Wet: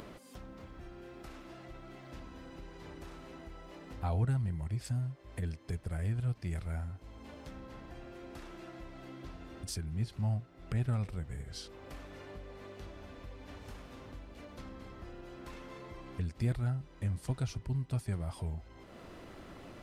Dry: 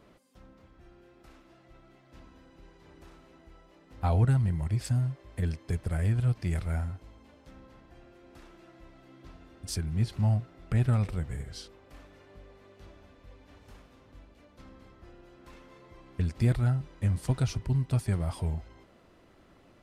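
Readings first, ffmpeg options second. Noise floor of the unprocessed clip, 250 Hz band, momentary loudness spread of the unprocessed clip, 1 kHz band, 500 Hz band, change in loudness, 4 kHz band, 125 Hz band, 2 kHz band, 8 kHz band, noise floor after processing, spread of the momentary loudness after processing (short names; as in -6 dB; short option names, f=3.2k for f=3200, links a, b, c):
-60 dBFS, -6.0 dB, 11 LU, -5.0 dB, -4.5 dB, -10.0 dB, -3.5 dB, -7.0 dB, -4.0 dB, -5.0 dB, -55 dBFS, 16 LU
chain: -af "acompressor=mode=upward:threshold=-28dB:ratio=2.5,volume=-7dB"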